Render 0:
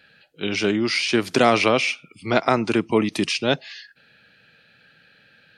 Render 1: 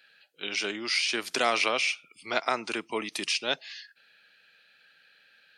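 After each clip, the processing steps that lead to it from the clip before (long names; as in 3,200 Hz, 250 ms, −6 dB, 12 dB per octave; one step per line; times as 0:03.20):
high-pass filter 630 Hz 6 dB per octave
spectral tilt +1.5 dB per octave
level −6 dB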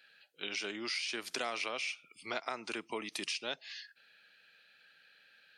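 downward compressor 3 to 1, threshold −33 dBFS, peak gain reduction 10 dB
level −3 dB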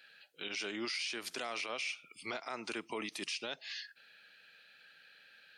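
brickwall limiter −31.5 dBFS, peak gain reduction 11.5 dB
level +3 dB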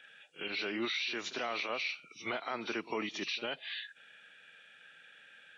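hearing-aid frequency compression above 2,300 Hz 1.5 to 1
echo ahead of the sound 51 ms −16 dB
level +4 dB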